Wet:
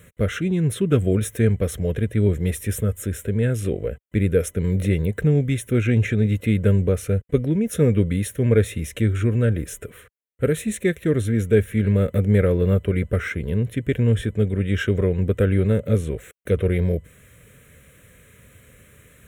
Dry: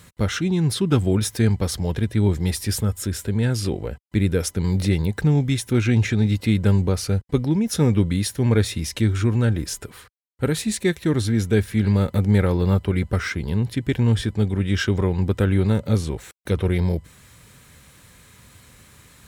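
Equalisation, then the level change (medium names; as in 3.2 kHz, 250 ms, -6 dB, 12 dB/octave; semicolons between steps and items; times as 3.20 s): high-order bell 600 Hz +10 dB 1.2 oct; static phaser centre 2 kHz, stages 4; 0.0 dB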